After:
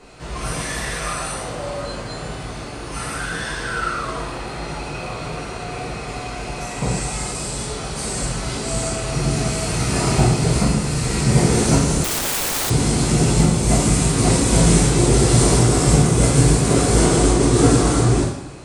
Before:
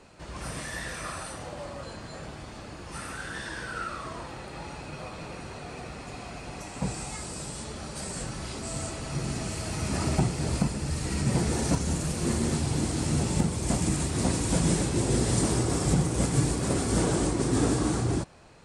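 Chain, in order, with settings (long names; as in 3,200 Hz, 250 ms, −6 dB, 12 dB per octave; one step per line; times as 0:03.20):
coupled-rooms reverb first 0.65 s, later 2.2 s, from −18 dB, DRR −5.5 dB
0:12.04–0:12.70: wrap-around overflow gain 22 dB
level +4.5 dB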